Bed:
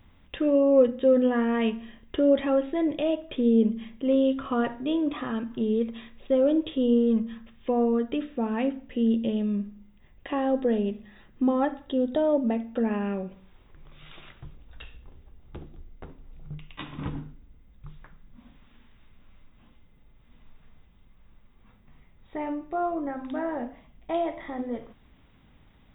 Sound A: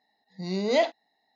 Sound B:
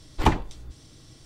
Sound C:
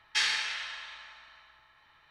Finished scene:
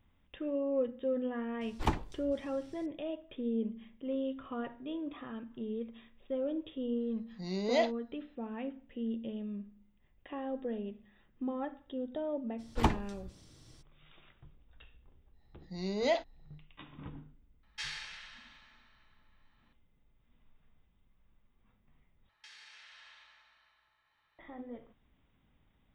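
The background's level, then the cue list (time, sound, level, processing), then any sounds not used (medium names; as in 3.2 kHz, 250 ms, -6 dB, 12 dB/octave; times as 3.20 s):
bed -13 dB
1.61 s: add B -10.5 dB
7.00 s: add A -6.5 dB
12.58 s: add B -8 dB, fades 0.02 s
15.32 s: add A -7 dB, fades 0.10 s
17.63 s: add C -13 dB
22.29 s: replace with C -13.5 dB + compression 8:1, threshold -38 dBFS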